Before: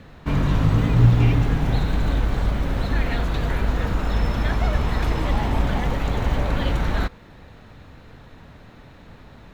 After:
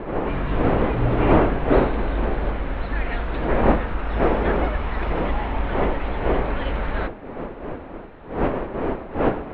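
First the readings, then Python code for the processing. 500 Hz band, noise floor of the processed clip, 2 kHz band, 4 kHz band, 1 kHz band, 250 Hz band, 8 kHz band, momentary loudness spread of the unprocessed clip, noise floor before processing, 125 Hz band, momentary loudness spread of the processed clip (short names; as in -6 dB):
+8.5 dB, -37 dBFS, +1.5 dB, -5.0 dB, +5.0 dB, +2.5 dB, n/a, 7 LU, -46 dBFS, -6.5 dB, 13 LU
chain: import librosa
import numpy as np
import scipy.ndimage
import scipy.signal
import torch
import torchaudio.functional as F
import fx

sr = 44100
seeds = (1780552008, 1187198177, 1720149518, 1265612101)

y = fx.dmg_wind(x, sr, seeds[0], corner_hz=440.0, level_db=-21.0)
y = scipy.signal.sosfilt(scipy.signal.butter(4, 2900.0, 'lowpass', fs=sr, output='sos'), y)
y = fx.peak_eq(y, sr, hz=120.0, db=-10.5, octaves=1.9)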